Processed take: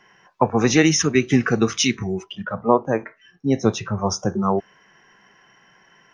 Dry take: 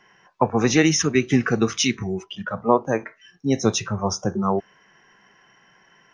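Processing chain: 2.32–3.98 s: low-pass 2.2 kHz 6 dB/octave; trim +1.5 dB

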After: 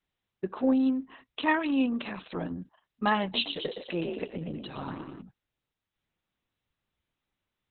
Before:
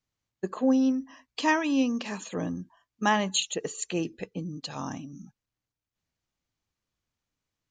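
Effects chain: 3.22–5.22 s: frequency-shifting echo 117 ms, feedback 48%, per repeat +46 Hz, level -5 dB; trim -1 dB; Opus 6 kbps 48 kHz

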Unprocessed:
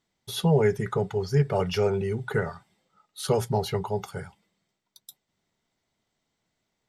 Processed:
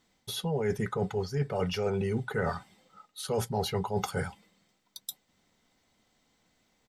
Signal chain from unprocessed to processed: comb 3.9 ms, depth 31%; reverse; compression 12:1, threshold -34 dBFS, peak gain reduction 17.5 dB; reverse; trim +7.5 dB

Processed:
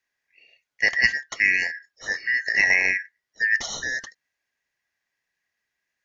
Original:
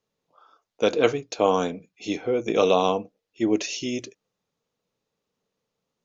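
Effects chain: four frequency bands reordered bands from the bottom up 3142

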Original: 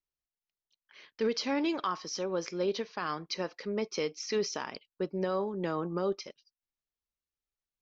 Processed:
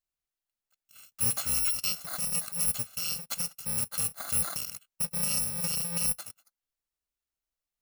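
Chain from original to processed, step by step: bit-reversed sample order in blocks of 128 samples; trim +2 dB

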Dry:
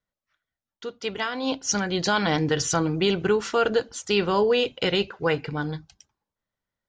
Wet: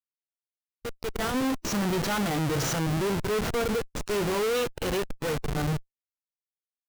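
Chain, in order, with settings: vibrato 8.8 Hz 12 cents; Schmitt trigger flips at -29.5 dBFS; harmonic-percussive split percussive -7 dB; trim +1 dB

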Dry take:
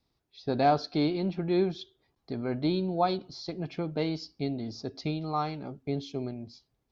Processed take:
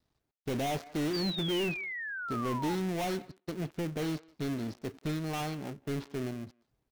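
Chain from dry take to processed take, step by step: dead-time distortion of 0.29 ms; speakerphone echo 180 ms, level -26 dB; overload inside the chain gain 28.5 dB; painted sound fall, 1.13–2.75 s, 820–4800 Hz -38 dBFS

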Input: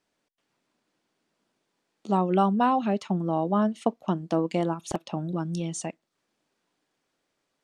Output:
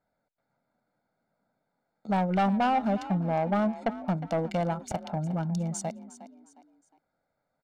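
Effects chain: local Wiener filter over 15 samples; comb 1.4 ms, depth 71%; saturation -20 dBFS, distortion -12 dB; frequency-shifting echo 359 ms, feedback 34%, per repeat +41 Hz, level -15 dB

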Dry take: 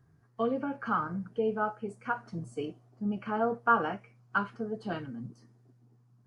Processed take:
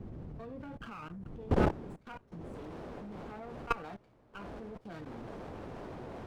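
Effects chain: wind noise 180 Hz -30 dBFS, from 1.48 s 360 Hz, from 2.54 s 590 Hz; treble shelf 5.5 kHz +4.5 dB; level held to a coarse grid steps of 20 dB; sliding maximum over 9 samples; trim -4 dB

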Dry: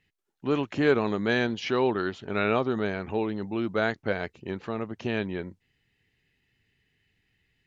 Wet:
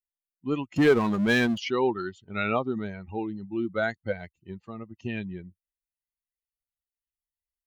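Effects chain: expander on every frequency bin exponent 2; 0.76–1.58 s: power-law waveshaper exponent 0.7; trim +3 dB

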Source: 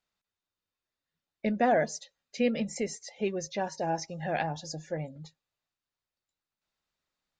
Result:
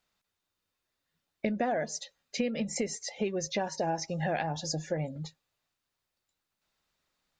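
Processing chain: compression 8:1, threshold -34 dBFS, peak gain reduction 13 dB; trim +6.5 dB

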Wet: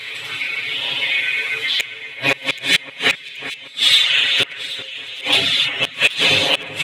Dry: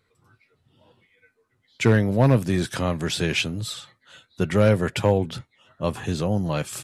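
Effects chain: spectral levelling over time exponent 0.6; recorder AGC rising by 5 dB/s; high-pass 1.3 kHz 6 dB/octave; high-order bell 2.7 kHz +15 dB 1.3 oct; gated-style reverb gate 320 ms flat, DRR -4 dB; in parallel at +1 dB: compression 6:1, threshold -31 dBFS, peak gain reduction 26 dB; on the sum: reverb removal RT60 0.62 s; inverted gate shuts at -3 dBFS, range -31 dB; hard clipper -9 dBFS, distortion -19 dB; comb 7.2 ms, depth 98%; echo whose repeats swap between lows and highs 389 ms, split 2.2 kHz, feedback 70%, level -12 dB

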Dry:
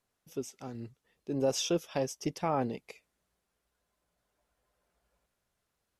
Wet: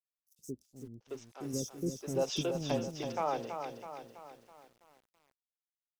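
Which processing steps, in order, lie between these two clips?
dynamic bell 1.8 kHz, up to -4 dB, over -51 dBFS, Q 1.7; crossover distortion -53 dBFS; 0.60–1.41 s: bass shelf 370 Hz -6 dB; three bands offset in time highs, lows, mids 120/740 ms, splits 370/5900 Hz; bit-crushed delay 327 ms, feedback 55%, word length 10-bit, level -7 dB

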